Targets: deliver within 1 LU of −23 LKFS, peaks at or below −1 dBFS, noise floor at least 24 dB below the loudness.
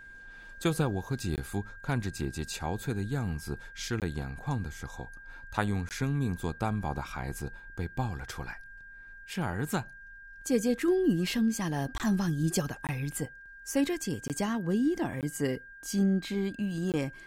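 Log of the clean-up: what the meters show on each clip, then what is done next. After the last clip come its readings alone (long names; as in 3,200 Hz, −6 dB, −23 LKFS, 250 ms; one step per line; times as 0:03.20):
number of dropouts 8; longest dropout 18 ms; interfering tone 1,600 Hz; level of the tone −47 dBFS; integrated loudness −32.0 LKFS; sample peak −13.0 dBFS; target loudness −23.0 LKFS
→ repair the gap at 0:01.36/0:04.00/0:05.89/0:11.98/0:12.87/0:14.28/0:15.21/0:16.92, 18 ms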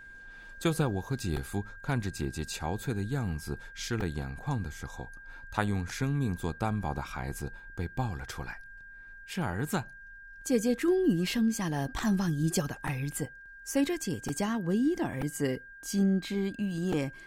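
number of dropouts 0; interfering tone 1,600 Hz; level of the tone −47 dBFS
→ notch filter 1,600 Hz, Q 30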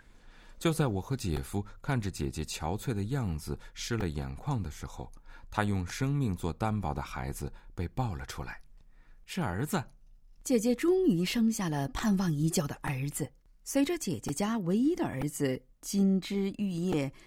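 interfering tone none found; integrated loudness −32.0 LKFS; sample peak −13.0 dBFS; target loudness −23.0 LKFS
→ level +9 dB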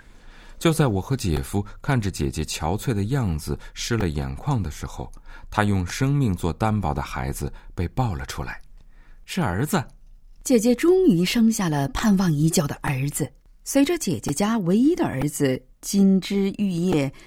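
integrated loudness −23.0 LKFS; sample peak −4.0 dBFS; background noise floor −49 dBFS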